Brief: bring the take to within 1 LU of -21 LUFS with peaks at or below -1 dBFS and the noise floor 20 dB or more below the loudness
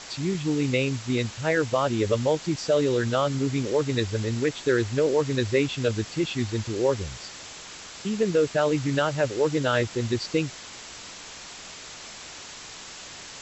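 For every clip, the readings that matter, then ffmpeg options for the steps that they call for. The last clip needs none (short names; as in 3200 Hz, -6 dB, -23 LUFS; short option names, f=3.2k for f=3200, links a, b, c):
noise floor -42 dBFS; noise floor target -46 dBFS; loudness -25.5 LUFS; peak -9.5 dBFS; loudness target -21.0 LUFS
-> -af "afftdn=nr=6:nf=-42"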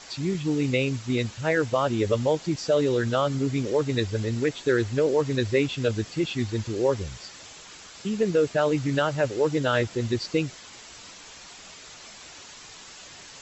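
noise floor -46 dBFS; loudness -25.5 LUFS; peak -9.5 dBFS; loudness target -21.0 LUFS
-> -af "volume=4.5dB"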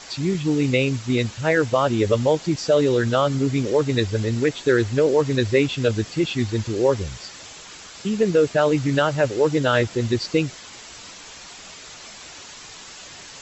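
loudness -21.0 LUFS; peak -5.0 dBFS; noise floor -41 dBFS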